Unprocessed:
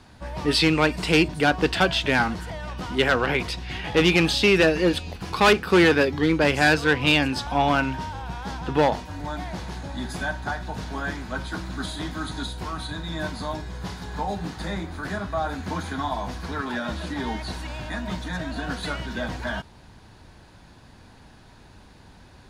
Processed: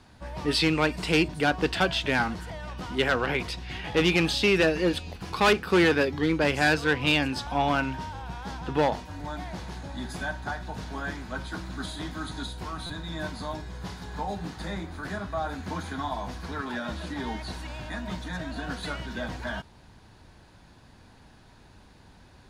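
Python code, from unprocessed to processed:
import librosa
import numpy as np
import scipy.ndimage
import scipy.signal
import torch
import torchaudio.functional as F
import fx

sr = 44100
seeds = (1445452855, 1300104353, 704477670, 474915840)

y = fx.buffer_glitch(x, sr, at_s=(12.86,), block=256, repeats=5)
y = F.gain(torch.from_numpy(y), -4.0).numpy()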